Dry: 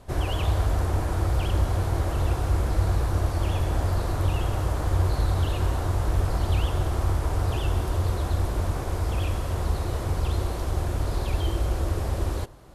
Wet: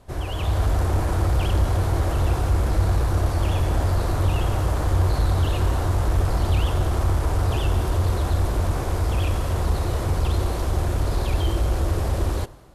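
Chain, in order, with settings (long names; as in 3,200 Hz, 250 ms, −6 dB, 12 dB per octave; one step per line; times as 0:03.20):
automatic gain control gain up to 7.5 dB
in parallel at −3 dB: soft clipping −16 dBFS, distortion −12 dB
on the sum: level −7 dB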